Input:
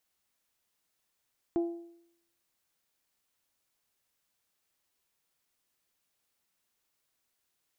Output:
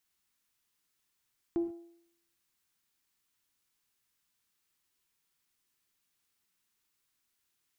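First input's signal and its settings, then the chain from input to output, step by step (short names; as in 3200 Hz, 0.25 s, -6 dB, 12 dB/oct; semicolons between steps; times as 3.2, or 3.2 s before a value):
metal hit bell, lowest mode 340 Hz, decay 0.72 s, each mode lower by 12 dB, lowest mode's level -23.5 dB
bell 610 Hz -11 dB 0.69 oct; non-linear reverb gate 0.16 s flat, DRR 11 dB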